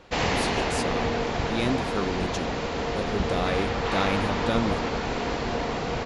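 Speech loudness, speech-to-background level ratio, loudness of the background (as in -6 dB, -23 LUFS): -31.5 LUFS, -4.0 dB, -27.5 LUFS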